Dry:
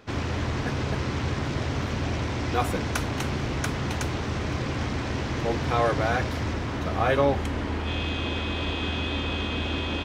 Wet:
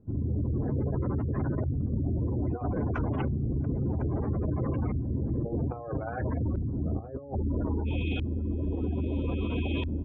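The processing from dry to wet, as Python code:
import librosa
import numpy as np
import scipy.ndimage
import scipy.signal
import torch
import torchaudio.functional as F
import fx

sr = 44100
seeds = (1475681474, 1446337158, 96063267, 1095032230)

y = fx.spec_gate(x, sr, threshold_db=-15, keep='strong')
y = fx.over_compress(y, sr, threshold_db=-28.0, ratio=-0.5)
y = fx.filter_lfo_lowpass(y, sr, shape='saw_up', hz=0.61, low_hz=200.0, high_hz=2600.0, q=0.83)
y = fx.doppler_dist(y, sr, depth_ms=0.15)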